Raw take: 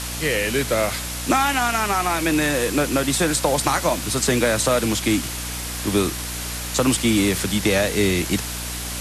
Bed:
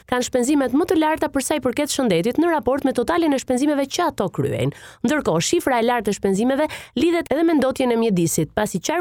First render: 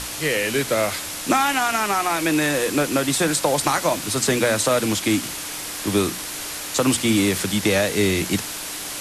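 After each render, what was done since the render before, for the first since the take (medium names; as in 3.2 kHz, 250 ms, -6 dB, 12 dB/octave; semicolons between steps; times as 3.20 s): hum notches 60/120/180/240 Hz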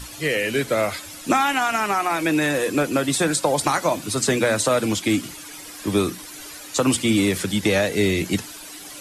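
noise reduction 12 dB, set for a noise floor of -31 dBFS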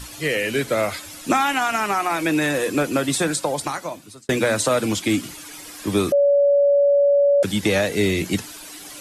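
3.13–4.29 s: fade out; 6.12–7.43 s: bleep 568 Hz -12.5 dBFS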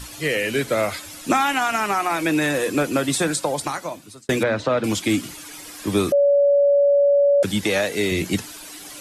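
4.43–4.84 s: distance through air 250 m; 7.63–8.12 s: bass shelf 200 Hz -10.5 dB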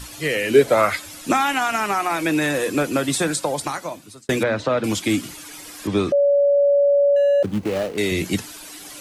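0.49–0.95 s: peaking EQ 280 Hz -> 2 kHz +13 dB; 5.87–6.57 s: distance through air 100 m; 7.16–7.98 s: median filter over 25 samples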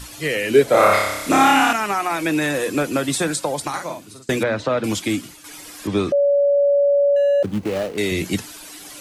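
0.71–1.73 s: flutter echo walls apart 5.1 m, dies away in 1 s; 3.69–4.32 s: doubling 46 ms -4 dB; 4.99–5.44 s: fade out, to -8 dB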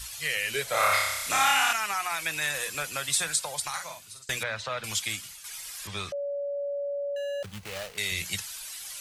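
amplifier tone stack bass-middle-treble 10-0-10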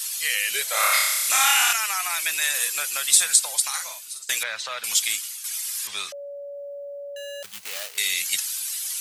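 high-pass 360 Hz 6 dB/octave; tilt EQ +3.5 dB/octave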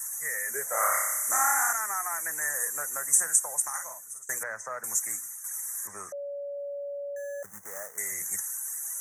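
Chebyshev band-stop 1.9–6.1 kHz, order 4; tilt shelf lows +4.5 dB, about 640 Hz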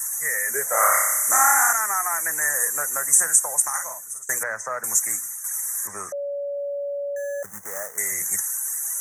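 trim +7.5 dB; peak limiter -3 dBFS, peak gain reduction 3 dB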